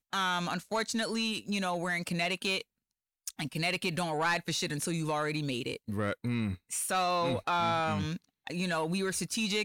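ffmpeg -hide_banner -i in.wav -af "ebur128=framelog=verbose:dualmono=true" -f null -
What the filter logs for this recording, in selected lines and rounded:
Integrated loudness:
  I:         -28.8 LUFS
  Threshold: -39.0 LUFS
Loudness range:
  LRA:         1.4 LU
  Threshold: -49.2 LUFS
  LRA low:   -29.8 LUFS
  LRA high:  -28.4 LUFS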